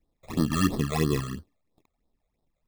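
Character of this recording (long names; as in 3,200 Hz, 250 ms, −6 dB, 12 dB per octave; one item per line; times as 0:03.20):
aliases and images of a low sample rate 1,500 Hz, jitter 0%
phaser sweep stages 12, 3 Hz, lowest notch 280–2,500 Hz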